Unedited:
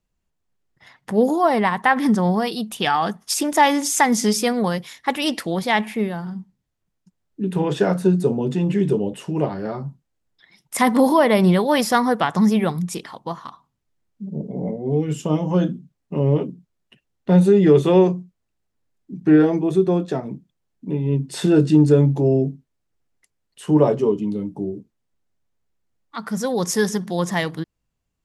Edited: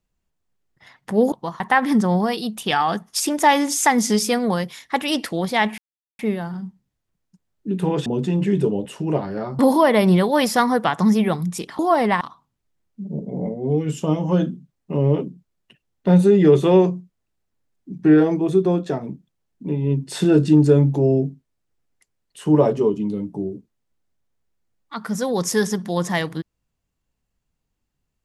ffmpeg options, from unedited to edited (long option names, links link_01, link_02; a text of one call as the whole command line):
ffmpeg -i in.wav -filter_complex "[0:a]asplit=8[link_01][link_02][link_03][link_04][link_05][link_06][link_07][link_08];[link_01]atrim=end=1.322[link_09];[link_02]atrim=start=13.148:end=13.432[link_10];[link_03]atrim=start=1.738:end=5.92,asetpts=PTS-STARTPTS,afade=type=out:start_time=4.178:duration=0.004:curve=hsin,apad=pad_dur=0.41[link_11];[link_04]atrim=start=5.92:end=7.792,asetpts=PTS-STARTPTS,afade=type=in:duration=0.004:curve=hsin[link_12];[link_05]atrim=start=8.338:end=9.872[link_13];[link_06]atrim=start=10.948:end=13.152[link_14];[link_07]atrim=start=1.318:end=1.742[link_15];[link_08]atrim=start=13.428[link_16];[link_09][link_10]acrossfade=duration=0.004:curve1=hsin:curve2=hsin[link_17];[link_11][link_12]concat=n=2:v=0:a=1[link_18];[link_17][link_18]acrossfade=duration=0.004:curve1=hsin:curve2=hsin[link_19];[link_19][link_13]acrossfade=duration=0.004:curve1=hsin:curve2=hsin[link_20];[link_20][link_14]acrossfade=duration=0.004:curve1=hsin:curve2=hsin[link_21];[link_21][link_15]acrossfade=duration=0.004:curve1=hsin:curve2=hsin[link_22];[link_22][link_16]acrossfade=duration=0.004:curve1=hsin:curve2=hsin" out.wav